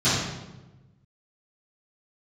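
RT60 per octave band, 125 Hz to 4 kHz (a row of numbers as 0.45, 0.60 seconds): 1.7, 1.5, 1.2, 1.0, 0.85, 0.75 seconds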